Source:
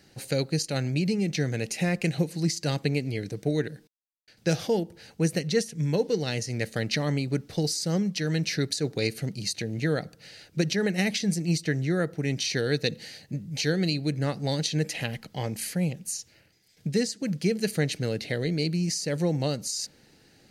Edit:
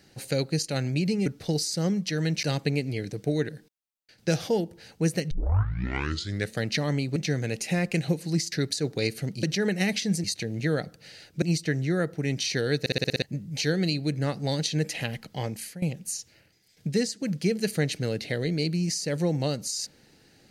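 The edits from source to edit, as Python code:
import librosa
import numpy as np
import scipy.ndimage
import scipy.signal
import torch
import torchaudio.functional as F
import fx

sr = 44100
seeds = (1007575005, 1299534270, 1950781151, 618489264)

y = fx.edit(x, sr, fx.swap(start_s=1.26, length_s=1.36, other_s=7.35, other_length_s=1.17),
    fx.tape_start(start_s=5.5, length_s=1.22),
    fx.move(start_s=10.61, length_s=0.81, to_s=9.43),
    fx.stutter_over(start_s=12.8, slice_s=0.06, count=7),
    fx.fade_out_to(start_s=15.44, length_s=0.38, floor_db=-15.5), tone=tone)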